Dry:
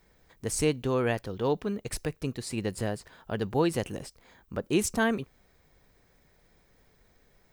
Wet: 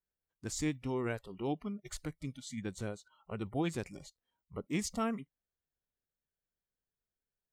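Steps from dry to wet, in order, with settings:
formants moved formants −3 semitones
noise reduction from a noise print of the clip's start 25 dB
level −8 dB

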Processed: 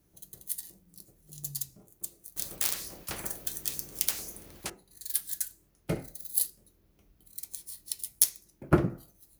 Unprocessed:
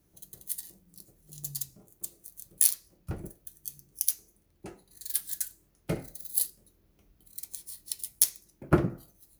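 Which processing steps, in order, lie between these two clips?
0:02.36–0:04.70: every bin compressed towards the loudest bin 4 to 1

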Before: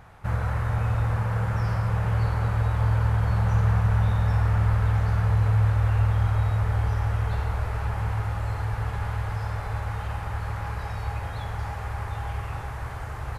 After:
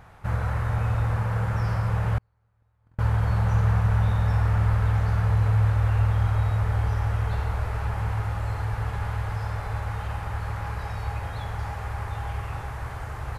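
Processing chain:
0:02.18–0:02.99: noise gate −15 dBFS, range −44 dB

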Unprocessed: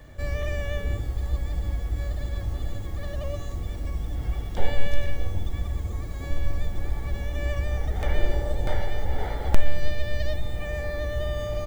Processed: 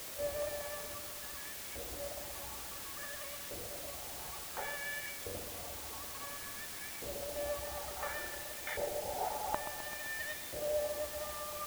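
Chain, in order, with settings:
auto-filter band-pass saw up 0.57 Hz 480–2,200 Hz
reverb reduction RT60 1.5 s
bit-depth reduction 8 bits, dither triangular
on a send: feedback echo with a low-pass in the loop 129 ms, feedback 78%, low-pass 1,300 Hz, level −9 dB
on the sum: level +2.5 dB

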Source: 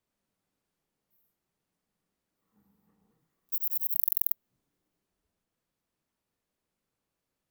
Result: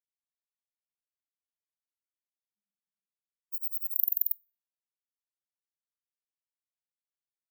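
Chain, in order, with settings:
0:03.58–0:04.27: frequency shifter −440 Hz
four-comb reverb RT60 1 s, DRR 14.5 dB
every bin expanded away from the loudest bin 2.5 to 1

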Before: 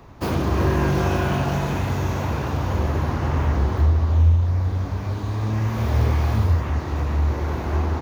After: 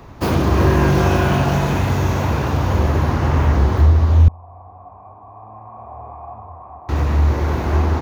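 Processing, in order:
0:04.28–0:06.89: formant resonators in series a
level +5.5 dB

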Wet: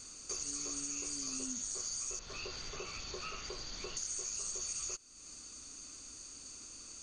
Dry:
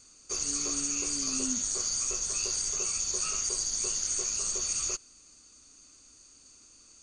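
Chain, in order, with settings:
0:02.19–0:03.97: low-pass filter 4,000 Hz 24 dB per octave
downward compressor 3 to 1, threshold −49 dBFS, peak gain reduction 16.5 dB
level +6 dB

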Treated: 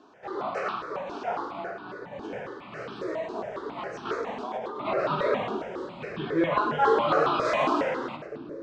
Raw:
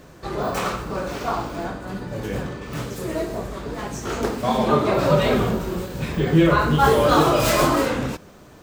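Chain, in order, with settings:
0:02.81–0:04.85: compressor whose output falls as the input rises −25 dBFS, ratio −1
band-pass filter 310–5,500 Hz
high-frequency loss of the air 140 metres
echo with a time of its own for lows and highs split 450 Hz, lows 721 ms, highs 105 ms, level −9 dB
step-sequenced phaser 7.3 Hz 540–2,000 Hz
level −2 dB

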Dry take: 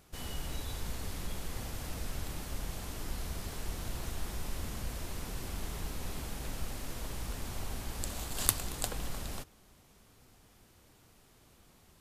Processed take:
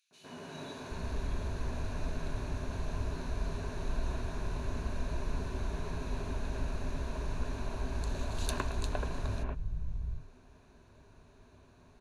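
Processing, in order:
head-to-tape spacing loss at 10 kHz 21 dB
three-band delay without the direct sound highs, mids, lows 110/780 ms, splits 150/2,700 Hz
automatic gain control gain up to 4.5 dB
EQ curve with evenly spaced ripples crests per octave 1.5, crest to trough 9 dB

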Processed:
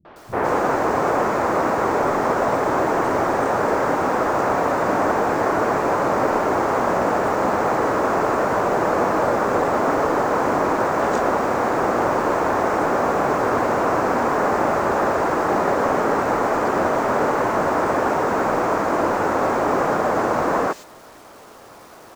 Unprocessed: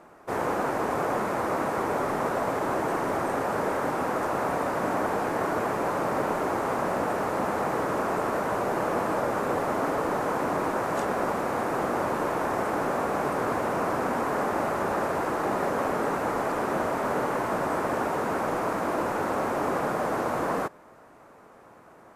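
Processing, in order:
Butterworth low-pass 7,700 Hz 36 dB per octave
bit reduction 9 bits
three-band delay without the direct sound lows, mids, highs 50/160 ms, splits 170/3,100 Hz
level +8 dB

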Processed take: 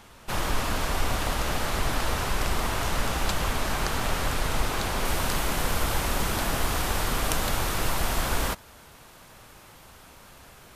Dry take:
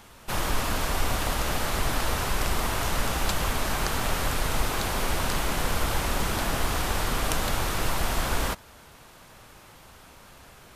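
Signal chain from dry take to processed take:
high-shelf EQ 9,300 Hz −4.5 dB, from 0:05.05 +3 dB

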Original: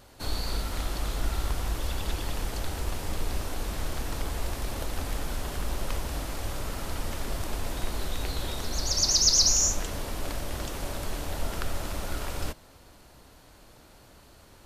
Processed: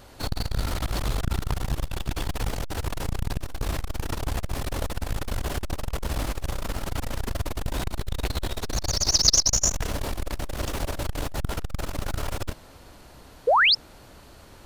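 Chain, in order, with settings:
parametric band 12,000 Hz −3 dB 2 octaves
in parallel at −11 dB: bit reduction 6 bits
on the sum: sound drawn into the spectrogram rise, 0:13.47–0:13.75, 430–5,500 Hz −23 dBFS
saturating transformer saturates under 340 Hz
level +5.5 dB

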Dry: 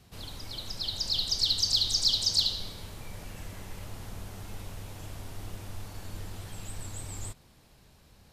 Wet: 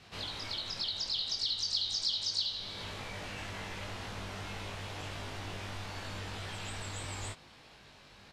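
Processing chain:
low-pass filter 3,100 Hz 12 dB per octave
spectral tilt +3 dB per octave
downward compressor 2.5 to 1, threshold −44 dBFS, peak gain reduction 15 dB
double-tracking delay 20 ms −2 dB
level +5 dB

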